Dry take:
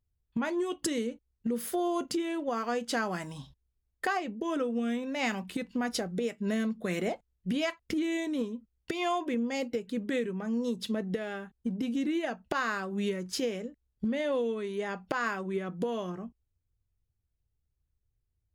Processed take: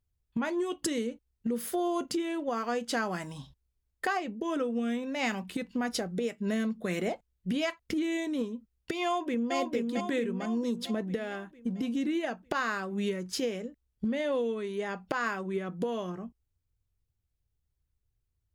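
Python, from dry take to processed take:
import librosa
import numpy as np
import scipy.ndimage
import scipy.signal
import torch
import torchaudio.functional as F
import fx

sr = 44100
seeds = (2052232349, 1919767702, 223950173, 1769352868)

y = fx.echo_throw(x, sr, start_s=9.05, length_s=0.5, ms=450, feedback_pct=55, wet_db=-3.0)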